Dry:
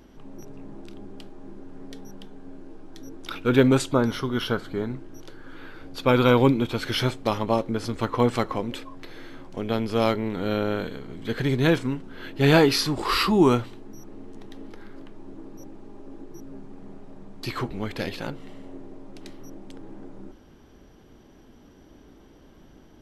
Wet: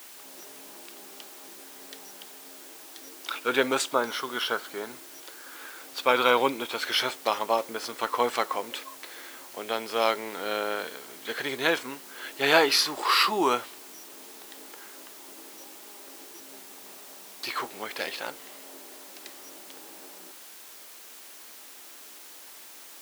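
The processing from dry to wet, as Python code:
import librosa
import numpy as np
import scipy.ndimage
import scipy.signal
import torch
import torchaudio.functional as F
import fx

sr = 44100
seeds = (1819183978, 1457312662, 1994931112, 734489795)

p1 = fx.quant_dither(x, sr, seeds[0], bits=6, dither='triangular')
p2 = x + (p1 * 10.0 ** (-11.0 / 20.0))
y = scipy.signal.sosfilt(scipy.signal.butter(2, 650.0, 'highpass', fs=sr, output='sos'), p2)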